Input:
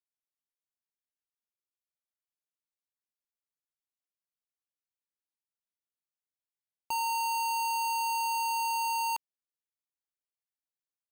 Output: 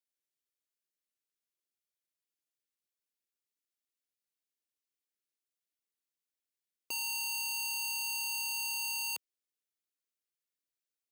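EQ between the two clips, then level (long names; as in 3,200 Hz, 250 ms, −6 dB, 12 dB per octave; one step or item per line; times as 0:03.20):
high-pass filter 100 Hz 12 dB per octave
phaser with its sweep stopped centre 360 Hz, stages 4
+2.0 dB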